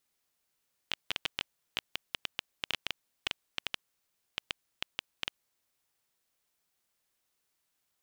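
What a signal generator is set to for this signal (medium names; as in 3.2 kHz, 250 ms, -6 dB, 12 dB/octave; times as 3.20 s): random clicks 6.5 per s -13 dBFS 5.03 s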